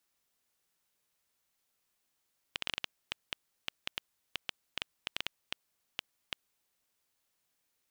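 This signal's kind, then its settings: random clicks 5.5/s -15 dBFS 4.19 s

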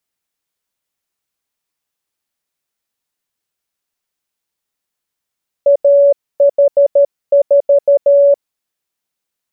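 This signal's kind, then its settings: Morse "AH4" 13 wpm 566 Hz -5 dBFS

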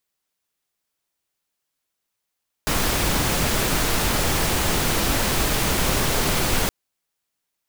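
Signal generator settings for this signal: noise pink, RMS -21 dBFS 4.02 s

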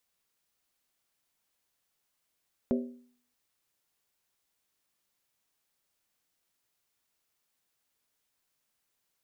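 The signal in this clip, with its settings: skin hit, lowest mode 245 Hz, decay 0.55 s, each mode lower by 4.5 dB, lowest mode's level -23 dB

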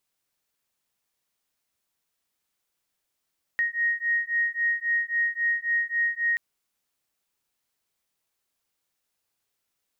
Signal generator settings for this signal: beating tones 1870 Hz, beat 3.7 Hz, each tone -26 dBFS 2.78 s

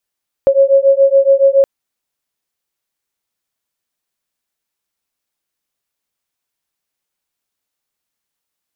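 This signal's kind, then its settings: beating tones 544 Hz, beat 7.1 Hz, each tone -10 dBFS 1.17 s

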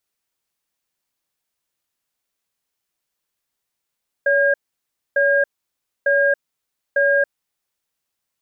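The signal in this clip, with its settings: cadence 565 Hz, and 1620 Hz, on 0.28 s, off 0.62 s, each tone -16 dBFS 3.21 s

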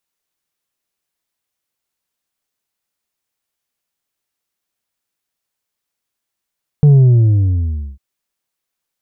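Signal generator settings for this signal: sub drop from 150 Hz, over 1.15 s, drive 4 dB, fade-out 1.08 s, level -5 dB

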